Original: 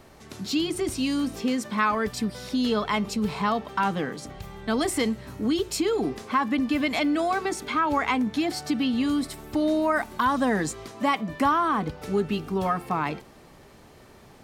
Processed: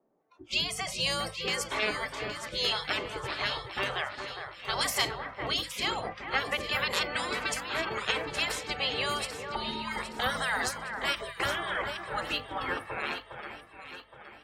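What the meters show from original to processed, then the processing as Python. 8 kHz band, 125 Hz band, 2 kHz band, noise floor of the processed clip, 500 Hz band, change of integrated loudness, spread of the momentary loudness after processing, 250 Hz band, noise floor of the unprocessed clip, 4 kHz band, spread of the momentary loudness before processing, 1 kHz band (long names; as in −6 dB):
−1.5 dB, −8.0 dB, +0.5 dB, −53 dBFS, −8.0 dB, −5.0 dB, 7 LU, −18.5 dB, −51 dBFS, +4.0 dB, 5 LU, −7.5 dB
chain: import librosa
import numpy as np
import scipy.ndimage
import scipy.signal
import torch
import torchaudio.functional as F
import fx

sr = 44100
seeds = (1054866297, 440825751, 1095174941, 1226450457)

y = fx.dmg_buzz(x, sr, base_hz=50.0, harmonics=3, level_db=-44.0, tilt_db=-8, odd_only=False)
y = fx.spec_gate(y, sr, threshold_db=-15, keep='weak')
y = fx.hum_notches(y, sr, base_hz=50, count=5)
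y = fx.noise_reduce_blind(y, sr, reduce_db=23)
y = fx.low_shelf(y, sr, hz=120.0, db=-9.0)
y = fx.env_lowpass(y, sr, base_hz=650.0, full_db=-33.5)
y = fx.echo_alternate(y, sr, ms=409, hz=2100.0, feedback_pct=65, wet_db=-6.5)
y = fx.end_taper(y, sr, db_per_s=270.0)
y = F.gain(torch.from_numpy(y), 6.0).numpy()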